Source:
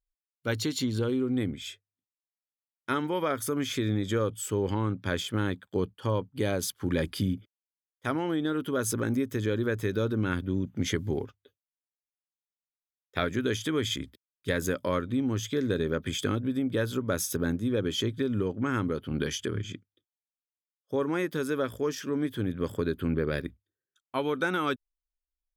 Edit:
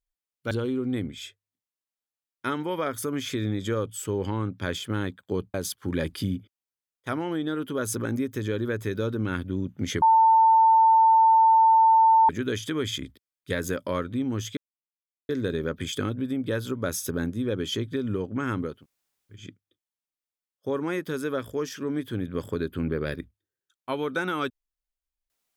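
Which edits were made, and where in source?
0:00.51–0:00.95: remove
0:05.98–0:06.52: remove
0:11.00–0:13.27: beep over 895 Hz −14 dBFS
0:15.55: splice in silence 0.72 s
0:19.00–0:19.67: fill with room tone, crossfade 0.24 s

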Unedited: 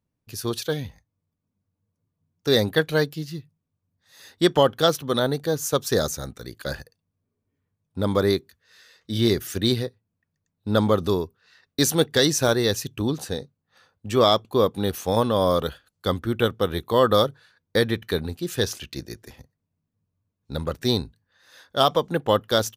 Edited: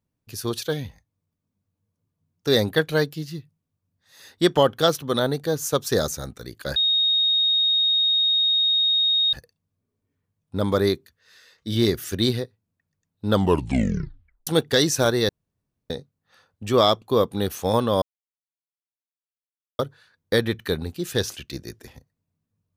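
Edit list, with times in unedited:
0:06.76: insert tone 3,730 Hz −17 dBFS 2.57 s
0:10.74: tape stop 1.16 s
0:12.72–0:13.33: fill with room tone
0:15.45–0:17.22: silence

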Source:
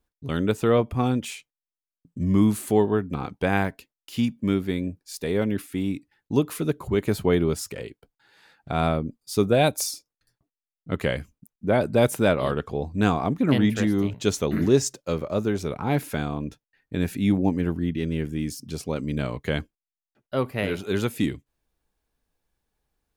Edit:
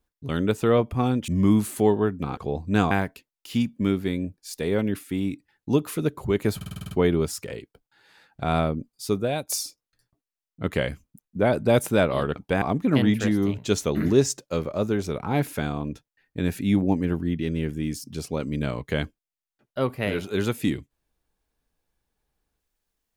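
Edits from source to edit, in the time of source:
0:01.28–0:02.19: remove
0:03.28–0:03.54: swap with 0:12.64–0:13.18
0:07.19: stutter 0.05 s, 8 plays
0:09.17–0:09.77: fade out, to −14 dB

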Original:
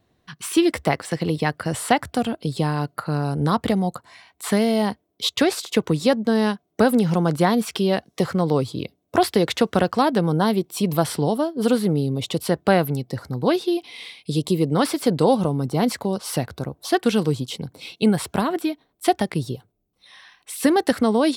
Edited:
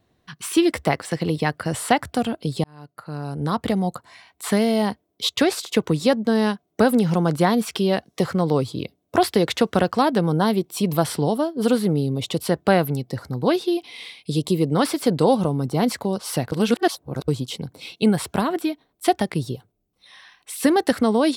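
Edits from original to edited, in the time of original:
0:02.64–0:03.89: fade in
0:16.52–0:17.28: reverse

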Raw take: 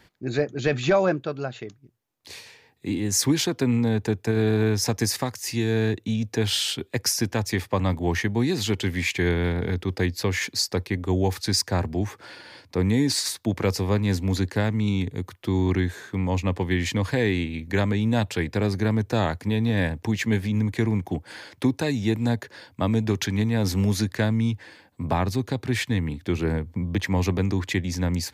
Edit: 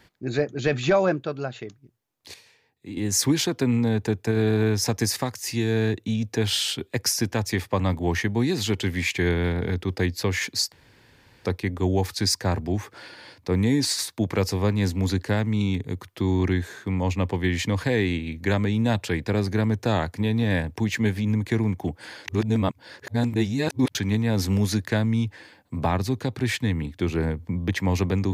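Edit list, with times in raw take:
0:02.34–0:02.97: clip gain −9.5 dB
0:10.72: splice in room tone 0.73 s
0:21.55–0:23.22: reverse

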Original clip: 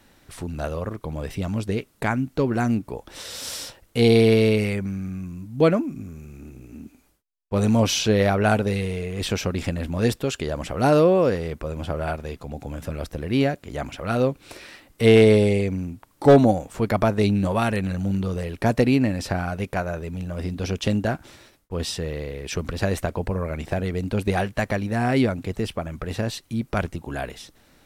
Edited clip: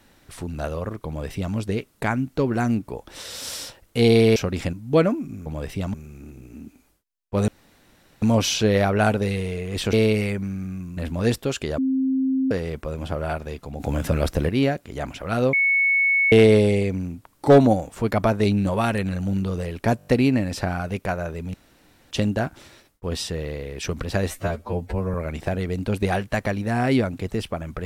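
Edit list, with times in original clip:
0:01.07–0:01.55: duplicate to 0:06.13
0:04.36–0:05.40: swap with 0:09.38–0:09.75
0:07.67: splice in room tone 0.74 s
0:10.56–0:11.29: beep over 264 Hz −18.5 dBFS
0:12.58–0:13.27: clip gain +8.5 dB
0:14.31–0:15.10: beep over 2,210 Hz −16 dBFS
0:18.75: stutter 0.02 s, 6 plays
0:20.22–0:20.79: fill with room tone
0:22.96–0:23.39: time-stretch 2×

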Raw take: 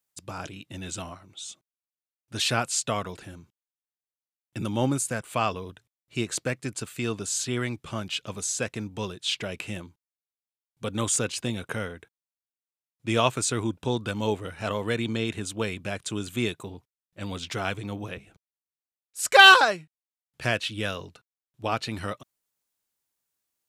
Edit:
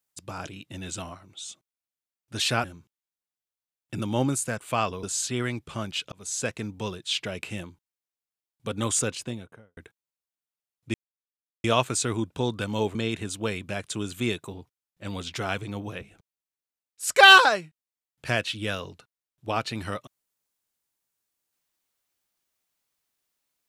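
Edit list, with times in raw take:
0:02.64–0:03.27: remove
0:05.66–0:07.20: remove
0:08.29–0:08.56: fade in
0:11.16–0:11.94: fade out and dull
0:13.11: splice in silence 0.70 s
0:14.42–0:15.11: remove

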